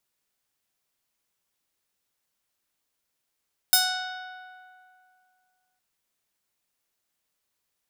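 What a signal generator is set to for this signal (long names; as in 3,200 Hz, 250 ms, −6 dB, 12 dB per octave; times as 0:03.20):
Karplus-Strong string F#5, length 2.06 s, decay 2.40 s, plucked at 0.36, bright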